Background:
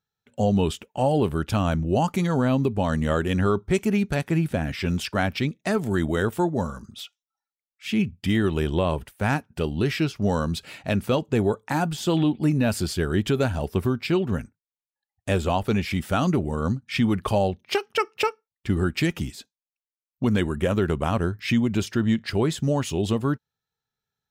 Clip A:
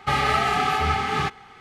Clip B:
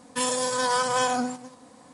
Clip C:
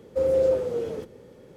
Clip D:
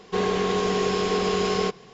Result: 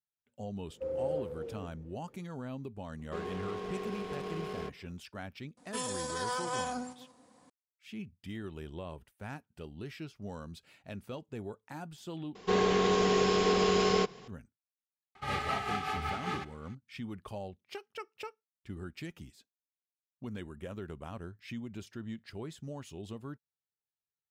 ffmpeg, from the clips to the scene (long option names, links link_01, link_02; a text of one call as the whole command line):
ffmpeg -i bed.wav -i cue0.wav -i cue1.wav -i cue2.wav -i cue3.wav -filter_complex "[4:a]asplit=2[link_01][link_02];[0:a]volume=-19.5dB[link_03];[3:a]highshelf=frequency=3200:gain=-11.5[link_04];[link_01]adynamicsmooth=sensitivity=3.5:basefreq=1300[link_05];[1:a]tremolo=f=5.2:d=0.53[link_06];[link_03]asplit=2[link_07][link_08];[link_07]atrim=end=12.354[link_09];[link_02]atrim=end=1.93,asetpts=PTS-STARTPTS,volume=-3dB[link_10];[link_08]atrim=start=14.276[link_11];[link_04]atrim=end=1.56,asetpts=PTS-STARTPTS,volume=-13dB,afade=type=in:duration=0.004:curve=hsin,afade=type=out:start_time=1.556:duration=0.004:curve=hsin,adelay=650[link_12];[link_05]atrim=end=1.93,asetpts=PTS-STARTPTS,volume=-15.5dB,afade=type=in:duration=0.004:curve=hsin,afade=type=out:start_time=1.926:duration=0.004:curve=hsin,adelay=2990[link_13];[2:a]atrim=end=1.93,asetpts=PTS-STARTPTS,volume=-11dB,afade=type=in:duration=0.004:curve=hsin,afade=type=out:start_time=1.926:duration=0.004:curve=hsin,adelay=245637S[link_14];[link_06]atrim=end=1.6,asetpts=PTS-STARTPTS,volume=-10.5dB,afade=type=in:duration=0.004:curve=hsin,afade=type=out:start_time=1.596:duration=0.004:curve=hsin,adelay=15150[link_15];[link_09][link_10]acrossfade=duration=0.004:curve1=hsin:curve2=hsin[link_16];[link_16][link_11]acrossfade=duration=0.004:curve1=hsin:curve2=hsin[link_17];[link_17][link_12][link_13][link_14][link_15]amix=inputs=5:normalize=0" out.wav